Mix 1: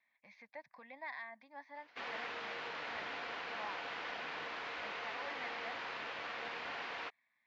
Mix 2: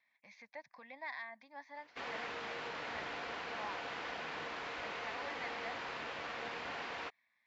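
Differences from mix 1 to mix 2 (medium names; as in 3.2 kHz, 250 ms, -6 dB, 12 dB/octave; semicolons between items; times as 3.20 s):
background: add tilt EQ -2 dB/octave; master: remove distance through air 140 m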